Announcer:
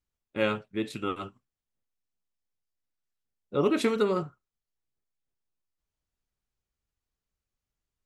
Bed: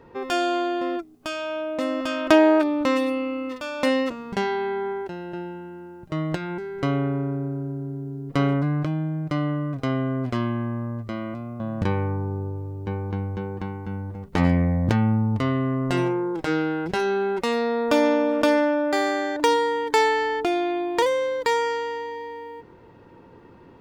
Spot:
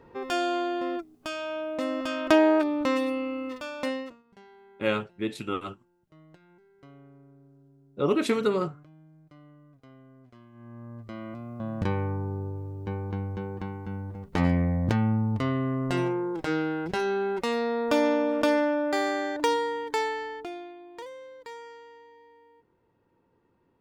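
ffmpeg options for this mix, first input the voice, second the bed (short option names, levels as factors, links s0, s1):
-filter_complex "[0:a]adelay=4450,volume=1.06[s0];[1:a]volume=10,afade=t=out:st=3.58:d=0.65:silence=0.0630957,afade=t=in:st=10.52:d=1.13:silence=0.0630957,afade=t=out:st=19.27:d=1.49:silence=0.149624[s1];[s0][s1]amix=inputs=2:normalize=0"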